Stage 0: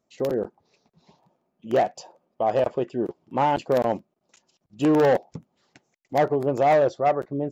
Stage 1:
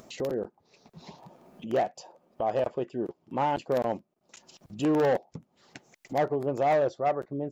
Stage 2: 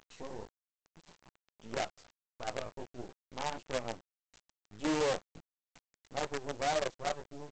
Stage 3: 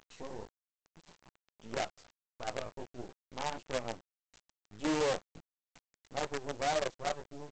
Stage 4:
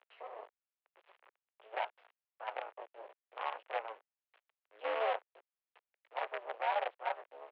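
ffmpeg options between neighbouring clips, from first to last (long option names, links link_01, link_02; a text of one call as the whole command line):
ffmpeg -i in.wav -af "acompressor=mode=upward:threshold=-26dB:ratio=2.5,volume=-5.5dB" out.wav
ffmpeg -i in.wav -af "flanger=delay=15.5:depth=3.6:speed=1.6,aresample=16000,acrusher=bits=5:dc=4:mix=0:aa=0.000001,aresample=44100,volume=-7dB" out.wav
ffmpeg -i in.wav -af anull out.wav
ffmpeg -i in.wav -af "aeval=exprs='val(0)*sin(2*PI*110*n/s)':channel_layout=same,highpass=frequency=390:width_type=q:width=0.5412,highpass=frequency=390:width_type=q:width=1.307,lowpass=frequency=2900:width_type=q:width=0.5176,lowpass=frequency=2900:width_type=q:width=0.7071,lowpass=frequency=2900:width_type=q:width=1.932,afreqshift=100,volume=2dB" out.wav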